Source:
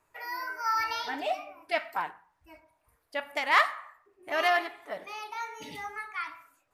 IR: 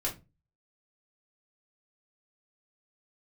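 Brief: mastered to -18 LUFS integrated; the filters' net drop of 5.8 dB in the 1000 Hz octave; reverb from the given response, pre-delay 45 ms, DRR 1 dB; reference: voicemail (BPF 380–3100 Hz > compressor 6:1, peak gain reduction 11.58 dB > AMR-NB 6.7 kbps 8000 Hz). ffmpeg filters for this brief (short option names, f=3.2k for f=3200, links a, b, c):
-filter_complex "[0:a]equalizer=f=1k:t=o:g=-8,asplit=2[a][b];[1:a]atrim=start_sample=2205,adelay=45[c];[b][c]afir=irnorm=-1:irlink=0,volume=-5.5dB[d];[a][d]amix=inputs=2:normalize=0,highpass=380,lowpass=3.1k,acompressor=threshold=-32dB:ratio=6,volume=21.5dB" -ar 8000 -c:a libopencore_amrnb -b:a 6700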